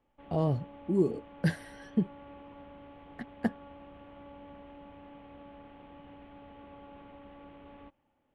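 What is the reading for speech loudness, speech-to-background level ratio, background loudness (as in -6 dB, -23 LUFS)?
-32.5 LUFS, 18.5 dB, -51.0 LUFS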